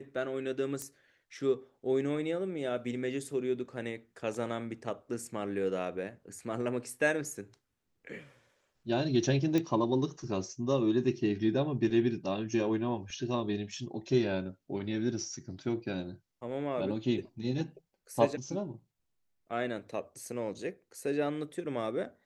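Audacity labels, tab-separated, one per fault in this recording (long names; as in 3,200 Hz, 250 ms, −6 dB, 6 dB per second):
0.820000	0.820000	click −23 dBFS
9.580000	9.580000	click −18 dBFS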